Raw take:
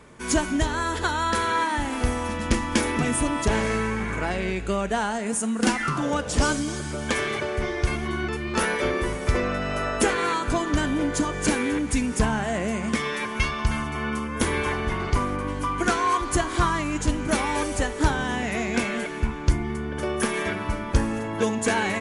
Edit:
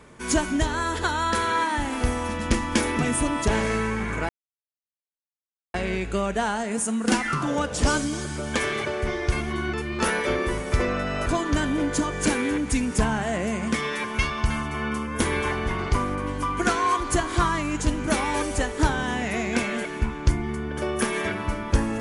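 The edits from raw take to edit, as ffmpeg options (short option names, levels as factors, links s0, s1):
-filter_complex "[0:a]asplit=3[s0][s1][s2];[s0]atrim=end=4.29,asetpts=PTS-STARTPTS,afade=t=out:st=4.286:d=0.004:c=hsin,apad=pad_dur=1.45[s3];[s1]atrim=start=4.29:end=9.812,asetpts=PTS-STARTPTS,afade=t=in:d=0.004:c=hsin[s4];[s2]atrim=start=10.468[s5];[s3][s4]concat=n=2:v=0:a=1[s6];[s6][s5]acrossfade=d=0.004:c1=hsin:c2=hsin"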